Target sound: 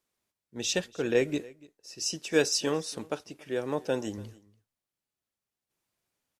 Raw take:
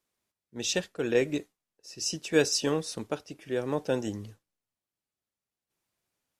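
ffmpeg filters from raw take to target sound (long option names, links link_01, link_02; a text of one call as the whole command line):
ffmpeg -i in.wav -filter_complex "[0:a]asettb=1/sr,asplit=3[link_01][link_02][link_03];[link_01]atrim=end=1.944[link_04];[link_02]atrim=start=1.94:end=4.18,asetpts=PTS-STARTPTS,afade=type=in:duration=0.004:curve=qsin,afade=type=out:start_time=2.236:duration=0.004:curve=qsin,lowshelf=frequency=170:gain=-6.5[link_05];[link_03]atrim=start=4.176[link_06];[link_04][link_05]acrossfade=duration=0.004:curve1=hsin:curve2=qsin[link_07];[link_07][link_06]acrossfade=duration=0.004:curve1=qsin:curve2=hsin,aecho=1:1:288:0.075" out.wav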